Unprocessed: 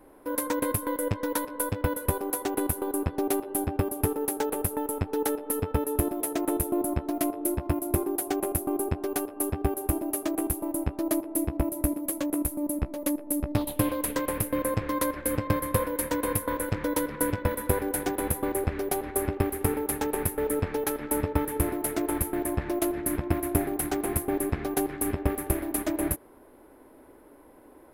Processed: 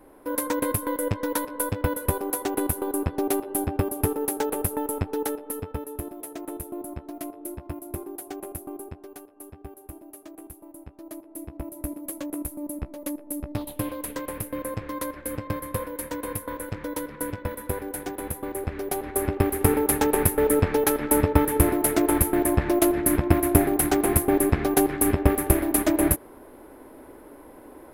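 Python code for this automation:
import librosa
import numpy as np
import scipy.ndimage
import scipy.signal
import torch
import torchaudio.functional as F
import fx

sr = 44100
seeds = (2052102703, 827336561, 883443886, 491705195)

y = fx.gain(x, sr, db=fx.line((4.99, 2.0), (5.96, -8.0), (8.67, -8.0), (9.24, -15.0), (10.93, -15.0), (12.07, -4.0), (18.45, -4.0), (19.78, 7.0)))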